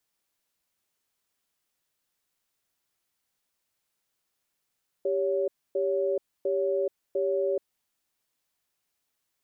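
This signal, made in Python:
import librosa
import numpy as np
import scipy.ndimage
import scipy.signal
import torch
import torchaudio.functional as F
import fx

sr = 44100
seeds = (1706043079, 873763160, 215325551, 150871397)

y = fx.cadence(sr, length_s=2.61, low_hz=393.0, high_hz=561.0, on_s=0.43, off_s=0.27, level_db=-26.5)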